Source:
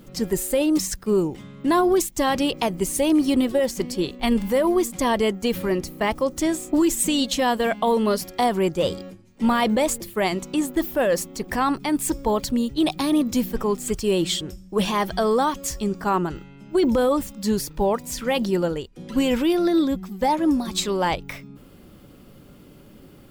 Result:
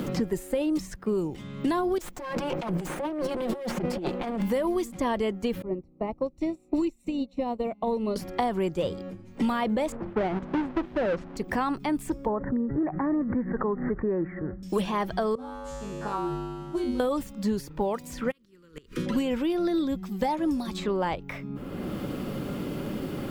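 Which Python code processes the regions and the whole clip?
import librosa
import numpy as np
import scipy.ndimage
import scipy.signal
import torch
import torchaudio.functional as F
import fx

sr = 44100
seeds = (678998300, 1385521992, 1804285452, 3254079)

y = fx.chain(x, sr, fx.lower_of_two(delay_ms=5.6),
    fx.over_compress(threshold_db=-33.0, ratio=-1.0), at=(1.98, 4.4))
y = fx.chain(y, sr, fx.moving_average(points=27),
    fx.upward_expand(threshold_db=-33.0, expansion=2.5), at=(5.62, 8.16))
y = fx.chain(y, sr, fx.halfwave_hold(),
    fx.lowpass(hz=1400.0, slope=12), at=(9.92, 11.37))
y = fx.chain(y, sr, fx.steep_lowpass(hz=1900.0, slope=96),
    fx.pre_swell(db_per_s=67.0), at=(12.26, 14.63))
y = fx.chain(y, sr, fx.cvsd(bps=64000),
    fx.tilt_eq(slope=-2.0),
    fx.comb_fb(f0_hz=50.0, decay_s=1.1, harmonics='odd', damping=0.0, mix_pct=100), at=(15.35, 17.0))
y = fx.spec_flatten(y, sr, power=0.69, at=(18.3, 19.05), fade=0.02)
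y = fx.cheby1_bandstop(y, sr, low_hz=450.0, high_hz=1200.0, order=2, at=(18.3, 19.05), fade=0.02)
y = fx.gate_flip(y, sr, shuts_db=-17.0, range_db=-38, at=(18.3, 19.05), fade=0.02)
y = fx.high_shelf(y, sr, hz=3900.0, db=-9.0)
y = fx.band_squash(y, sr, depth_pct=100)
y = F.gain(torch.from_numpy(y), -6.0).numpy()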